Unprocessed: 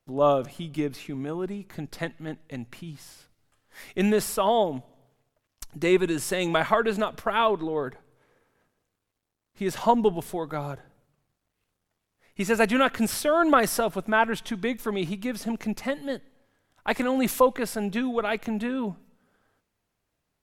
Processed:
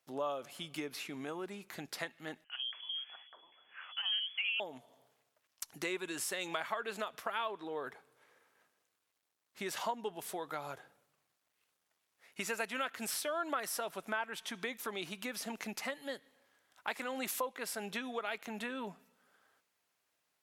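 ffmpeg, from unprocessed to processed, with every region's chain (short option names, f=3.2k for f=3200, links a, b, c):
-filter_complex "[0:a]asettb=1/sr,asplit=3[a][b][c];[a]atrim=end=2.444[d];[b]atrim=start=2.44:end=4.6,asetpts=PTS-STARTPTS,afade=t=in:d=0.004:c=qsin,afade=t=out:st=2.156:d=0.004:c=qsin,deesser=0.9,acrossover=split=410|2400[e][f][g];[e]adelay=70[h];[g]adelay=600[i];[h][f][i]amix=inputs=3:normalize=0,atrim=end_sample=95256,lowpass=f=2.9k:t=q:w=0.5098,lowpass=f=2.9k:t=q:w=0.6013,lowpass=f=2.9k:t=q:w=0.9,lowpass=f=2.9k:t=q:w=2.563,afreqshift=-3400[j];[c]atrim=start=4.596[k];[d][j]acrossfade=d=0.004:c1=hsin:c2=qsin[l];[l][k]acrossfade=d=0.004:c1=qsin:c2=hsin,highpass=f=1.1k:p=1,acompressor=threshold=-40dB:ratio=3,volume=2dB"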